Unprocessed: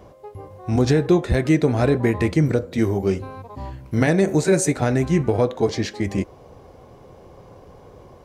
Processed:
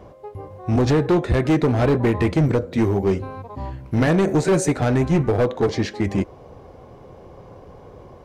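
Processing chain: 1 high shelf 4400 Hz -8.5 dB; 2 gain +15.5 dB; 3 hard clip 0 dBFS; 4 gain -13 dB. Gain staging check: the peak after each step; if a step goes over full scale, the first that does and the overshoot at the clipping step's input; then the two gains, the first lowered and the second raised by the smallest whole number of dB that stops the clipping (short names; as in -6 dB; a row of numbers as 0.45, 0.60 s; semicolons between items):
-7.0, +8.5, 0.0, -13.0 dBFS; step 2, 8.5 dB; step 2 +6.5 dB, step 4 -4 dB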